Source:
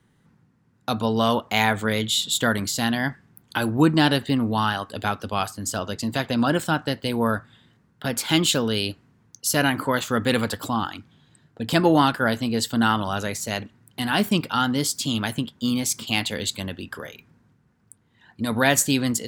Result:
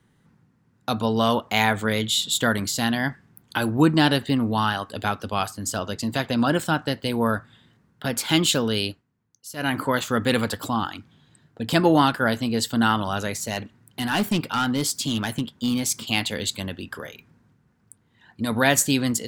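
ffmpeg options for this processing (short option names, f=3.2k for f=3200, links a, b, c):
-filter_complex "[0:a]asplit=3[a][b][c];[a]afade=t=out:st=13.4:d=0.02[d];[b]asoftclip=type=hard:threshold=-17dB,afade=t=in:st=13.4:d=0.02,afade=t=out:st=15.88:d=0.02[e];[c]afade=t=in:st=15.88:d=0.02[f];[d][e][f]amix=inputs=3:normalize=0,asplit=3[g][h][i];[g]atrim=end=9.03,asetpts=PTS-STARTPTS,afade=t=out:st=8.85:d=0.18:silence=0.16788[j];[h]atrim=start=9.03:end=9.56,asetpts=PTS-STARTPTS,volume=-15.5dB[k];[i]atrim=start=9.56,asetpts=PTS-STARTPTS,afade=t=in:d=0.18:silence=0.16788[l];[j][k][l]concat=n=3:v=0:a=1"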